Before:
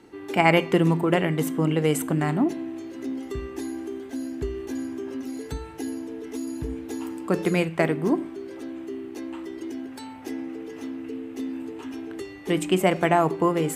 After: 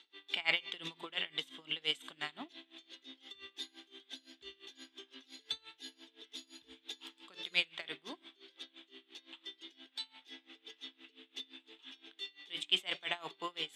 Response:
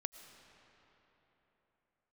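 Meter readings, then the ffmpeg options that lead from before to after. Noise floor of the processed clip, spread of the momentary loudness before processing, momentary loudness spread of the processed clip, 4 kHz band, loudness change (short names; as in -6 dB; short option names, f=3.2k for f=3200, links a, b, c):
-73 dBFS, 15 LU, 20 LU, +1.5 dB, -13.0 dB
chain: -af "bandpass=f=3.5k:t=q:w=9.3:csg=0,aeval=exprs='val(0)*pow(10,-22*(0.5-0.5*cos(2*PI*5.8*n/s))/20)':c=same,volume=16.5dB"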